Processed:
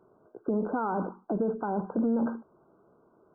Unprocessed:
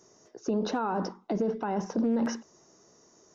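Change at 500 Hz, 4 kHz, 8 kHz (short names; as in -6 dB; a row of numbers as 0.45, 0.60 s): 0.0 dB, under -40 dB, n/a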